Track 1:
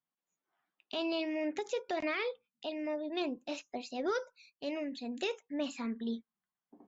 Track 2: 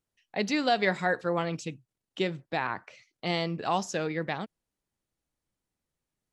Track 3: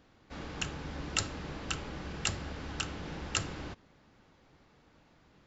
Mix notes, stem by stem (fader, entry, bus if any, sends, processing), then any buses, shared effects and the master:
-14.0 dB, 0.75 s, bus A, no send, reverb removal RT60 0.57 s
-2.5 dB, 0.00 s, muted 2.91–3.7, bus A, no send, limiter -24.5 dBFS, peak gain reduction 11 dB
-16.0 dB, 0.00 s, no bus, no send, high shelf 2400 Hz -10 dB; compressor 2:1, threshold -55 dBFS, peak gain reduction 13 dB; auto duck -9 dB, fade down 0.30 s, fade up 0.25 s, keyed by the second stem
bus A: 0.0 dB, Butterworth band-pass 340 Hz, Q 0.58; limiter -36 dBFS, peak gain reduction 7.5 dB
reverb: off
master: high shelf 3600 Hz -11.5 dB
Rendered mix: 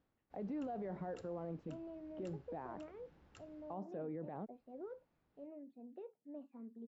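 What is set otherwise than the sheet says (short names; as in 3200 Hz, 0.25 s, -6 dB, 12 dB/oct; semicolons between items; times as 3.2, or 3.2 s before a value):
stem 1: missing reverb removal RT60 0.57 s; stem 3: missing compressor 2:1, threshold -55 dBFS, peak gain reduction 13 dB; master: missing high shelf 3600 Hz -11.5 dB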